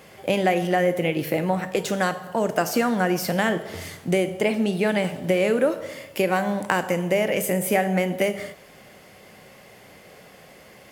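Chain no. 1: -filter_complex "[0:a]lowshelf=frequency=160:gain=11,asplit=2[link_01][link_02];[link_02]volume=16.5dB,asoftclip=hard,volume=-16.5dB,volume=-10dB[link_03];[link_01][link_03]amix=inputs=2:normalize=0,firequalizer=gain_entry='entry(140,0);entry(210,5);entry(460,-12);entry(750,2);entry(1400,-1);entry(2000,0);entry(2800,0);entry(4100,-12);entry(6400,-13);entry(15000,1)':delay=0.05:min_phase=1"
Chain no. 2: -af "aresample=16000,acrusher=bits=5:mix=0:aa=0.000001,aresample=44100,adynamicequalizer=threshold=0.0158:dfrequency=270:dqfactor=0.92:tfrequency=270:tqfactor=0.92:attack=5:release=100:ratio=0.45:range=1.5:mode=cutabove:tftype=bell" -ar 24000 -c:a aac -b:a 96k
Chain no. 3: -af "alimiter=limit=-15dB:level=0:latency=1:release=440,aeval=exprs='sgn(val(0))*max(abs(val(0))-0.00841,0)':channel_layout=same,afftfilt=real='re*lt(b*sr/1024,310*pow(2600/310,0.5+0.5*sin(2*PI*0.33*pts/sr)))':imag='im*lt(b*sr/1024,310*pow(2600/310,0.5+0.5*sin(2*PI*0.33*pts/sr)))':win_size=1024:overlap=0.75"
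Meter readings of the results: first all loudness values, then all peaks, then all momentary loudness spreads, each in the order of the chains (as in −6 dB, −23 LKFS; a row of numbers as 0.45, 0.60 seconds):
−18.5, −24.0, −30.5 LKFS; −5.0, −4.5, −15.5 dBFS; 7, 5, 10 LU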